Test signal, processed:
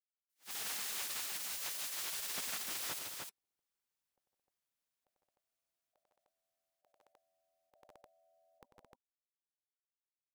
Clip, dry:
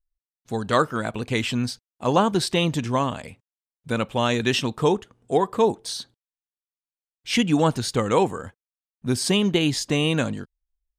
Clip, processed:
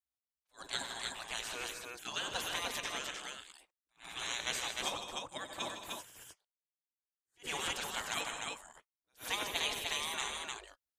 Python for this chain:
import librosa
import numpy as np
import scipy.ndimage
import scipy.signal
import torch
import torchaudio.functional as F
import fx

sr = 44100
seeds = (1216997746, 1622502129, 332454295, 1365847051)

y = fx.spec_gate(x, sr, threshold_db=-20, keep='weak')
y = fx.echo_multitap(y, sr, ms=(95, 154, 164, 219, 304), db=(-11.0, -11.0, -14.0, -13.5, -3.5))
y = fx.attack_slew(y, sr, db_per_s=300.0)
y = y * 10.0 ** (-3.0 / 20.0)